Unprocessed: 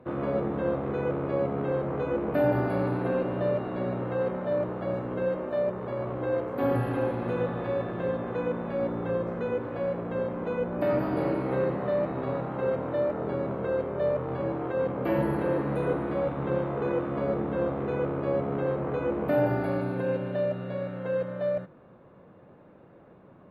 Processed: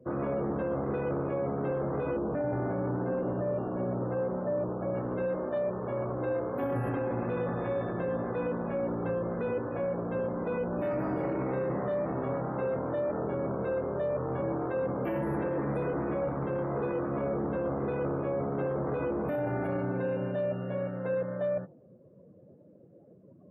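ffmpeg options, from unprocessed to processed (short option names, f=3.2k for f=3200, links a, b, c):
-filter_complex "[0:a]asettb=1/sr,asplit=3[a][b][c];[a]atrim=end=2.174[d];[b]atrim=start=2.17:end=4.94,asetpts=PTS-STARTPTS,afade=t=in:d=0.004:c=qsin,afade=t=out:st=2.766:d=0.004:c=qsin,lowpass=f=1.3k:p=1[e];[c]atrim=start=4.936[f];[d][e]acrossfade=d=0.004:c1=hsin:c2=qsin[g];[g][f]acrossfade=d=0.004:c1=qsin:c2=hsin,afftdn=nr=24:nf=-47,alimiter=limit=-24dB:level=0:latency=1:release=12"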